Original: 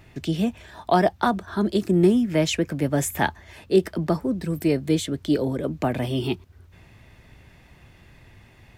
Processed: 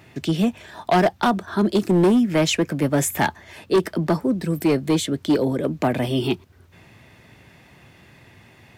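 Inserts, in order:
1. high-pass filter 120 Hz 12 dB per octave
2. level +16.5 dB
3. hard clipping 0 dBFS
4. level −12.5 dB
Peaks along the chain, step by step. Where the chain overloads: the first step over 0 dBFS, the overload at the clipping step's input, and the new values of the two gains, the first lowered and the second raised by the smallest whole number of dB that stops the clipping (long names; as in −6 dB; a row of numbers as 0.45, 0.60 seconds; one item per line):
−6.5, +10.0, 0.0, −12.5 dBFS
step 2, 10.0 dB
step 2 +6.5 dB, step 4 −2.5 dB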